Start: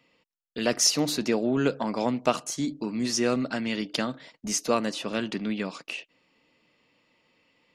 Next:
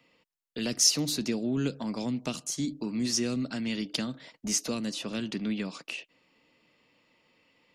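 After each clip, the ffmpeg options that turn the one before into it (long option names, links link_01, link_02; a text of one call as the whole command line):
ffmpeg -i in.wav -filter_complex "[0:a]acrossover=split=290|3000[link_01][link_02][link_03];[link_02]acompressor=threshold=-39dB:ratio=6[link_04];[link_01][link_04][link_03]amix=inputs=3:normalize=0" out.wav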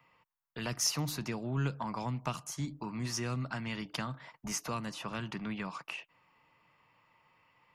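ffmpeg -i in.wav -af "equalizer=frequency=125:width_type=o:width=1:gain=6,equalizer=frequency=250:width_type=o:width=1:gain=-11,equalizer=frequency=500:width_type=o:width=1:gain=-7,equalizer=frequency=1000:width_type=o:width=1:gain=10,equalizer=frequency=4000:width_type=o:width=1:gain=-9,equalizer=frequency=8000:width_type=o:width=1:gain=-8" out.wav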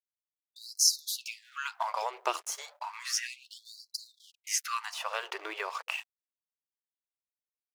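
ffmpeg -i in.wav -af "aeval=exprs='sgn(val(0))*max(abs(val(0))-0.00178,0)':channel_layout=same,afftfilt=real='re*gte(b*sr/1024,340*pow(4000/340,0.5+0.5*sin(2*PI*0.32*pts/sr)))':imag='im*gte(b*sr/1024,340*pow(4000/340,0.5+0.5*sin(2*PI*0.32*pts/sr)))':win_size=1024:overlap=0.75,volume=7.5dB" out.wav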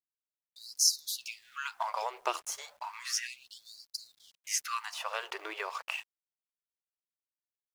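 ffmpeg -i in.wav -af "acrusher=bits=10:mix=0:aa=0.000001,volume=-1.5dB" out.wav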